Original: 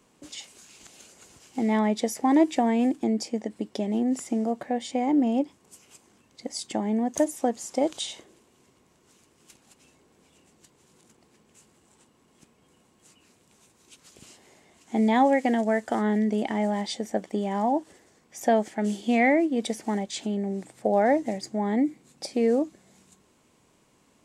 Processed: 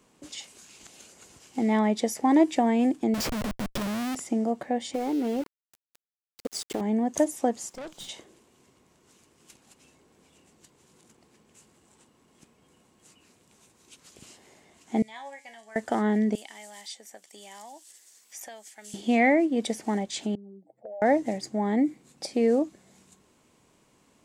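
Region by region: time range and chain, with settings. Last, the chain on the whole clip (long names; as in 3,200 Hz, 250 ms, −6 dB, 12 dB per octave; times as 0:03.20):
0:03.14–0:04.15: mains-hum notches 60/120/180 Hz + dynamic equaliser 400 Hz, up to −6 dB, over −41 dBFS, Q 1.9 + comparator with hysteresis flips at −43.5 dBFS
0:04.94–0:06.81: parametric band 420 Hz +15 dB 0.37 octaves + downward compressor 3 to 1, threshold −26 dBFS + centre clipping without the shift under −37.5 dBFS
0:07.69–0:08.09: gain on one half-wave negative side −12 dB + high-pass filter 160 Hz 24 dB per octave + tube saturation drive 36 dB, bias 0.65
0:15.02–0:15.76: guitar amp tone stack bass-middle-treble 10-0-10 + tuned comb filter 140 Hz, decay 0.31 s, mix 80%
0:16.35–0:18.94: first difference + multiband upward and downward compressor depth 70%
0:20.35–0:21.02: expanding power law on the bin magnitudes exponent 2.8 + resonant band-pass 640 Hz, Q 2.4 + downward compressor 3 to 1, threshold −42 dBFS
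whole clip: no processing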